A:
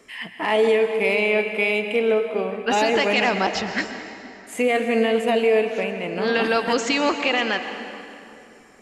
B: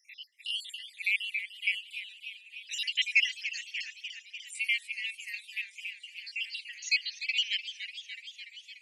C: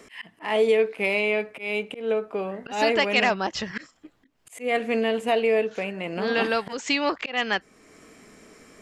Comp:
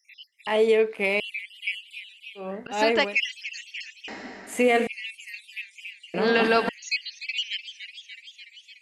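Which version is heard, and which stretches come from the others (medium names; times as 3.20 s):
B
0.47–1.20 s: from C
2.43–3.09 s: from C, crossfade 0.16 s
4.08–4.87 s: from A
6.14–6.69 s: from A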